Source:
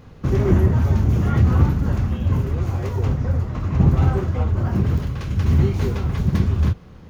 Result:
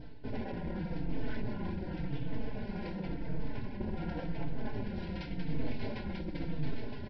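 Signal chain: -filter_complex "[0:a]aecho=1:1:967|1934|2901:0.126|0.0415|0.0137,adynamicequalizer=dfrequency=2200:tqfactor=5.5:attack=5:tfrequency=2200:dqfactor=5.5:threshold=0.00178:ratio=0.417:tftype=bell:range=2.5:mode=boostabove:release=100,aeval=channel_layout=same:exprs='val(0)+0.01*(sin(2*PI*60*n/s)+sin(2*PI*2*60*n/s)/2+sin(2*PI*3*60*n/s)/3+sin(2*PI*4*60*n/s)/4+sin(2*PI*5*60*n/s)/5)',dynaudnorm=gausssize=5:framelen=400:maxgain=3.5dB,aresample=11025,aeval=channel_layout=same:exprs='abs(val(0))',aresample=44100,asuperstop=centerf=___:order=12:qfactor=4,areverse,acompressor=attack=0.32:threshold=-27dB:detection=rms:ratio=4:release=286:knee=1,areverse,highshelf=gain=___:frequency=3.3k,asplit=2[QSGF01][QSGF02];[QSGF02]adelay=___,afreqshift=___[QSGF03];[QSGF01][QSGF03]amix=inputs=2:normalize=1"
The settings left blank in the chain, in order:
1200, 4.5, 4, -0.91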